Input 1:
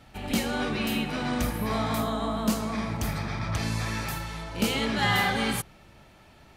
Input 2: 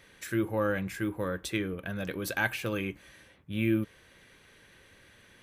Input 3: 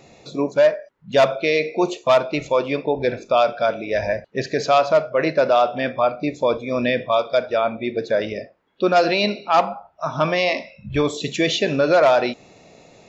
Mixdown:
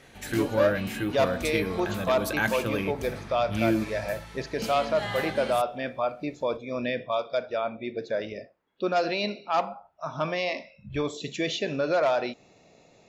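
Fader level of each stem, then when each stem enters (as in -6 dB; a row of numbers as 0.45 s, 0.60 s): -9.5 dB, +2.0 dB, -9.0 dB; 0.00 s, 0.00 s, 0.00 s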